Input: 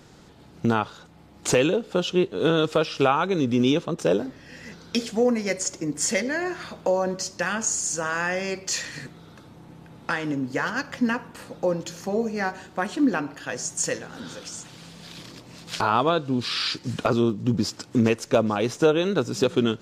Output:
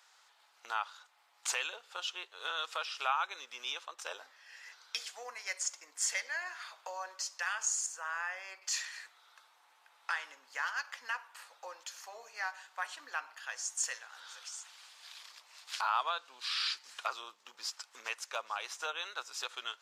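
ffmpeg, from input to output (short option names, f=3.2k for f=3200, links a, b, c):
-filter_complex "[0:a]asettb=1/sr,asplit=3[a][b][c];[a]atrim=end=7.864[d];[b]atrim=start=7.86:end=8.62,asetpts=PTS-STARTPTS,afade=t=in:d=0.004:c=qsin,afade=t=out:st=0.756:d=0.004:c=qsin,equalizer=f=5.7k:w=0.47:g=-10[e];[c]atrim=start=8.616[f];[d][e]acrossfade=d=0.004:c1=hsin:c2=qsin[g];[g][f]acrossfade=d=0.004:c1=qsin:c2=hsin,highpass=f=910:w=0.5412,highpass=f=910:w=1.3066,volume=-7.5dB"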